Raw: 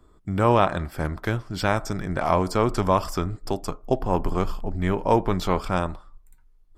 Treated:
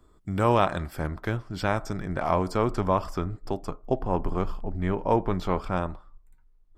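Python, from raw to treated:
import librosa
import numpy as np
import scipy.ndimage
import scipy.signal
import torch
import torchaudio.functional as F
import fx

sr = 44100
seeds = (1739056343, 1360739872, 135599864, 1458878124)

y = fx.high_shelf(x, sr, hz=3700.0, db=fx.steps((0.0, 3.0), (0.98, -5.5), (2.74, -11.0)))
y = y * 10.0 ** (-3.0 / 20.0)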